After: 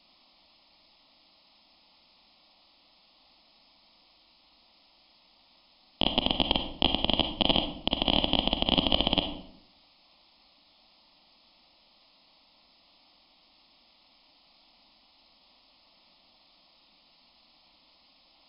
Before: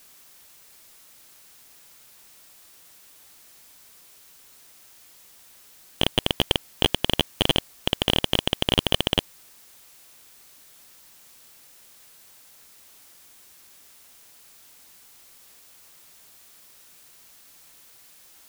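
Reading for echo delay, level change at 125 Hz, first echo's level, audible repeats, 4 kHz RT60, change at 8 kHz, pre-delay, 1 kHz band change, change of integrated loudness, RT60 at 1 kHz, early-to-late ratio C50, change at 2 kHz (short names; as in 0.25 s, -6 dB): none, -6.5 dB, none, none, 0.45 s, under -40 dB, 36 ms, 0.0 dB, -2.5 dB, 0.70 s, 8.0 dB, -6.0 dB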